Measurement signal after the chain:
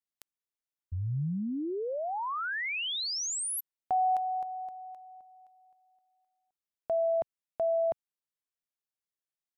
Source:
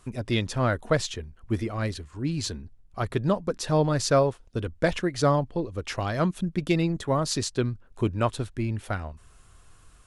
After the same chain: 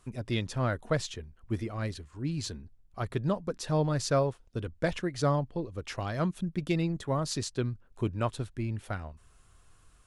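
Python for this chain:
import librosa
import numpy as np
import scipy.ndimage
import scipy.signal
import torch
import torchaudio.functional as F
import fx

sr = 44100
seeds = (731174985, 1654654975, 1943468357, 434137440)

y = fx.dynamic_eq(x, sr, hz=140.0, q=1.9, threshold_db=-40.0, ratio=4.0, max_db=3)
y = y * librosa.db_to_amplitude(-6.0)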